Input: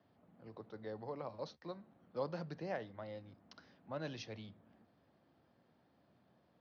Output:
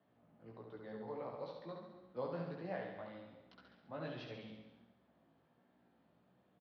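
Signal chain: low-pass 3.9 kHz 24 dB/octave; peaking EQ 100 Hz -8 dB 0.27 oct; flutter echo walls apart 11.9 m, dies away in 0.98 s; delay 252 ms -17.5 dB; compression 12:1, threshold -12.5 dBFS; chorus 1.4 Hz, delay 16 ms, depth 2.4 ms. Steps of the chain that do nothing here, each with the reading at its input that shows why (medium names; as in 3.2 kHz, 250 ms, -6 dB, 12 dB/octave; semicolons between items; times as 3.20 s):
compression, threshold -12.5 dBFS: peak at its input -27.5 dBFS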